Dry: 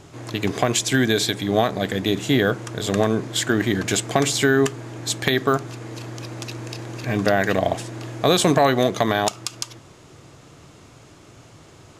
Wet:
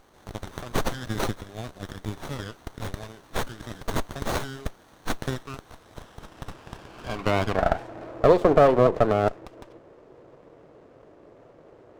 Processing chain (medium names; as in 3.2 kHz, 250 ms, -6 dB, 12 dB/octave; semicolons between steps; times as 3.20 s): band-pass sweep 5.5 kHz -> 520 Hz, 5.52–8.30 s; sliding maximum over 17 samples; trim +5.5 dB